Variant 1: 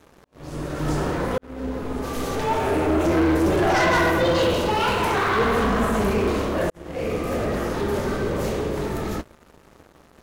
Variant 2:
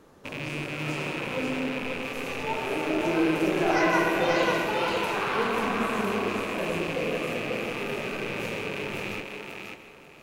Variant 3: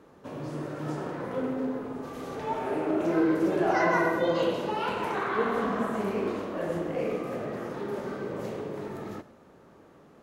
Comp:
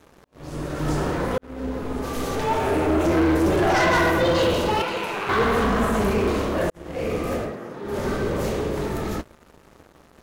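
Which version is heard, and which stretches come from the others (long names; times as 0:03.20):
1
0:04.82–0:05.29: punch in from 2
0:07.44–0:07.94: punch in from 3, crossfade 0.24 s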